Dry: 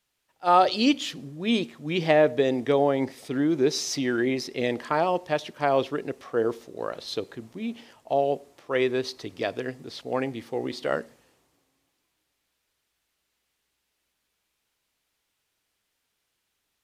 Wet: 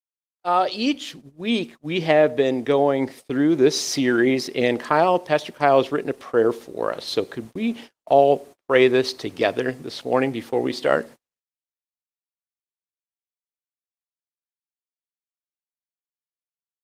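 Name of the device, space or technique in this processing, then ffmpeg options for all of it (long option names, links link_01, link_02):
video call: -af "highpass=frequency=120:poles=1,dynaudnorm=framelen=120:gausssize=21:maxgain=13.5dB,agate=range=-45dB:threshold=-36dB:ratio=16:detection=peak,volume=-1dB" -ar 48000 -c:a libopus -b:a 24k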